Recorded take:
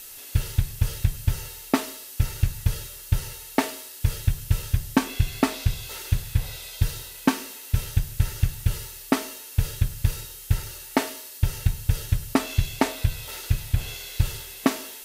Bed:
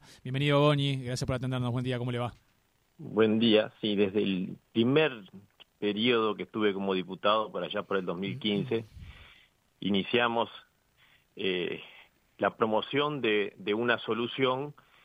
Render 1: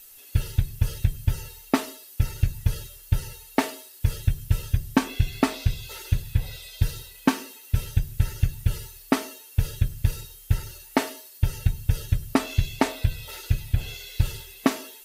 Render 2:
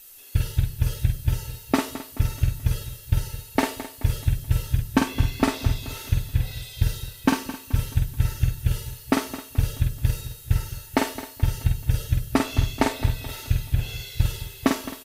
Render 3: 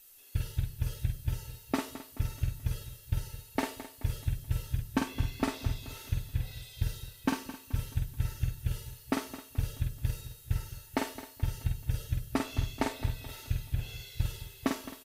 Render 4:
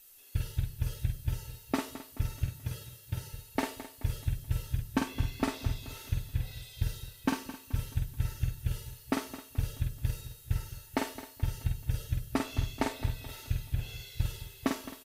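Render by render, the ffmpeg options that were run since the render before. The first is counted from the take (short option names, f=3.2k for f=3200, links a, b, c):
-af "afftdn=nr=10:nf=-42"
-filter_complex "[0:a]asplit=2[a][b];[b]adelay=48,volume=-4.5dB[c];[a][c]amix=inputs=2:normalize=0,aecho=1:1:215|430|645|860|1075:0.2|0.0958|0.046|0.0221|0.0106"
-af "volume=-9.5dB"
-filter_complex "[0:a]asettb=1/sr,asplit=3[a][b][c];[a]atrim=end=2.464[d];[b]atrim=start=2.46:end=3.33,asetpts=PTS-STARTPTS,afade=t=in:d=0.004:c=qsin,afade=t=out:st=0.866:d=0.004:c=qsin,highpass=98[e];[c]atrim=start=3.326[f];[d][e]acrossfade=d=0.004:c1=hsin:c2=qsin[g];[g][f]acrossfade=d=0.004:c1=qsin:c2=hsin"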